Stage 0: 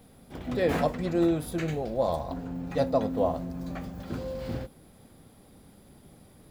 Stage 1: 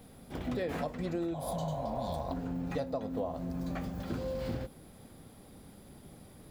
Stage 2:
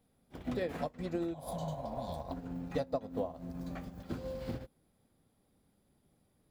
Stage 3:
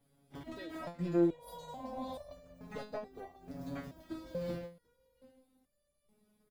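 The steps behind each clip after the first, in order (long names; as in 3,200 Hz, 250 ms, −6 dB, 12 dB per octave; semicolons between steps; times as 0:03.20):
healed spectral selection 0:01.36–0:02.15, 270–2,900 Hz after; downward compressor 12 to 1, threshold −32 dBFS, peak gain reduction 13.5 dB; level +1 dB
expander for the loud parts 2.5 to 1, over −45 dBFS; level +2.5 dB
soft clipping −29 dBFS, distortion −16 dB; single-tap delay 742 ms −23 dB; step-sequenced resonator 2.3 Hz 140–590 Hz; level +12.5 dB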